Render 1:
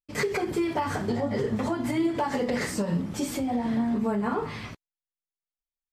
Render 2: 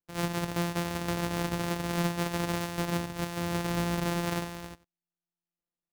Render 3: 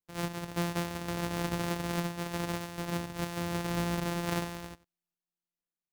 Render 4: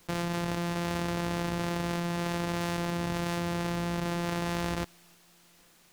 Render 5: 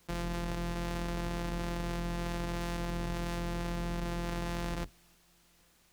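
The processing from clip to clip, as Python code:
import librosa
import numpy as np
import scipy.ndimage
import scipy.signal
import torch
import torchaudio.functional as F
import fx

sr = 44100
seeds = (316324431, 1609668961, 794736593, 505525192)

y1 = np.r_[np.sort(x[:len(x) // 256 * 256].reshape(-1, 256), axis=1).ravel(), x[len(x) // 256 * 256:]]
y1 = fx.low_shelf(y1, sr, hz=140.0, db=-5.5)
y1 = y1 + 10.0 ** (-20.5 / 20.0) * np.pad(y1, (int(94 * sr / 1000.0), 0))[:len(y1)]
y1 = y1 * librosa.db_to_amplitude(-2.5)
y2 = fx.tremolo_random(y1, sr, seeds[0], hz=3.5, depth_pct=55)
y3 = fx.high_shelf(y2, sr, hz=10000.0, db=-9.0)
y3 = fx.env_flatten(y3, sr, amount_pct=100)
y3 = y3 * librosa.db_to_amplitude(-3.0)
y4 = fx.octave_divider(y3, sr, octaves=2, level_db=1.0)
y4 = y4 * librosa.db_to_amplitude(-6.0)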